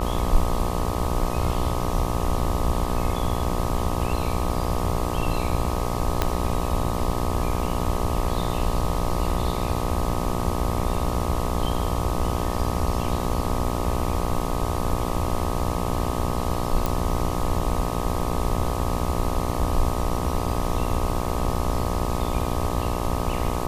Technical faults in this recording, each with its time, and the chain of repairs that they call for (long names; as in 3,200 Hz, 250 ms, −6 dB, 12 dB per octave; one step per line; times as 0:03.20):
mains buzz 60 Hz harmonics 21 −28 dBFS
0:06.22: click −6 dBFS
0:16.86: click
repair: click removal
hum removal 60 Hz, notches 21